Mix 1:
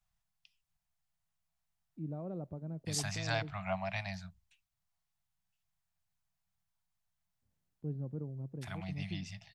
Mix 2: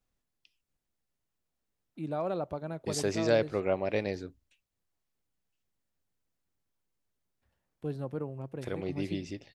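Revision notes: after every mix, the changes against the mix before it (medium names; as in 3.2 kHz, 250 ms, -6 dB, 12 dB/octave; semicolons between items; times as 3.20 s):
first voice: remove band-pass filter 150 Hz, Q 1.2; second voice: remove Chebyshev band-stop 190–650 Hz, order 5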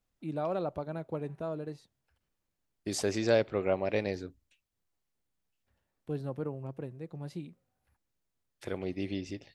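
first voice: entry -1.75 s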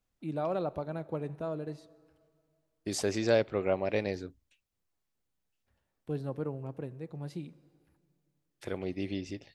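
reverb: on, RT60 2.4 s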